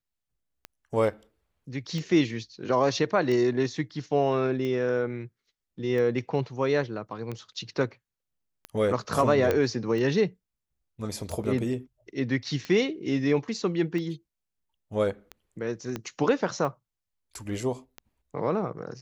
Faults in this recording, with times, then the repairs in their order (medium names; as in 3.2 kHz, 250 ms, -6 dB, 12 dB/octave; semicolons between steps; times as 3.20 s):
tick 45 rpm -22 dBFS
9.51 s: pop -12 dBFS
15.96 s: pop -18 dBFS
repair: de-click